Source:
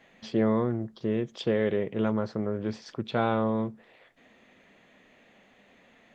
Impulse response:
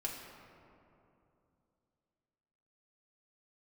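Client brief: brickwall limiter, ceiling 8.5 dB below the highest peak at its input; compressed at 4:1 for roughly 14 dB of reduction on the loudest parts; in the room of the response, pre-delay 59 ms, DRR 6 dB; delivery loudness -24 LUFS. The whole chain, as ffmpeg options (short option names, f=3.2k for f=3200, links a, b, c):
-filter_complex "[0:a]acompressor=threshold=-38dB:ratio=4,alimiter=level_in=8dB:limit=-24dB:level=0:latency=1,volume=-8dB,asplit=2[a][b];[1:a]atrim=start_sample=2205,adelay=59[c];[b][c]afir=irnorm=-1:irlink=0,volume=-7dB[d];[a][d]amix=inputs=2:normalize=0,volume=18.5dB"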